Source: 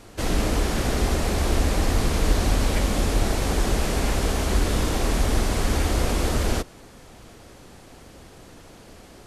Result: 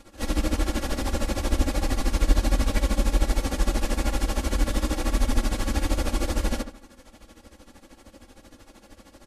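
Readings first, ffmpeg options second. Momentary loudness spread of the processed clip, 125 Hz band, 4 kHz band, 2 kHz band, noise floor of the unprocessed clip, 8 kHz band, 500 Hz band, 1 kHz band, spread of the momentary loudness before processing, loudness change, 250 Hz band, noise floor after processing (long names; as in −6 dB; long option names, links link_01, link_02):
4 LU, −4.0 dB, −4.0 dB, −4.0 dB, −47 dBFS, −4.5 dB, −5.0 dB, −4.0 dB, 1 LU, −3.0 dB, −2.0 dB, −56 dBFS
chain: -filter_complex "[0:a]aecho=1:1:3.6:0.92,tremolo=f=13:d=0.79,asplit=2[link_01][link_02];[link_02]adelay=72,lowpass=frequency=2500:poles=1,volume=-8.5dB,asplit=2[link_03][link_04];[link_04]adelay=72,lowpass=frequency=2500:poles=1,volume=0.35,asplit=2[link_05][link_06];[link_06]adelay=72,lowpass=frequency=2500:poles=1,volume=0.35,asplit=2[link_07][link_08];[link_08]adelay=72,lowpass=frequency=2500:poles=1,volume=0.35[link_09];[link_03][link_05][link_07][link_09]amix=inputs=4:normalize=0[link_10];[link_01][link_10]amix=inputs=2:normalize=0,volume=-3.5dB"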